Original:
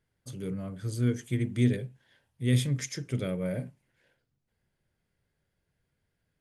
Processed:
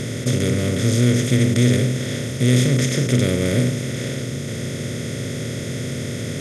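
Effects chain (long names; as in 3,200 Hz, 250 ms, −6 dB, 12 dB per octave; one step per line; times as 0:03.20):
compressor on every frequency bin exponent 0.2
level +5 dB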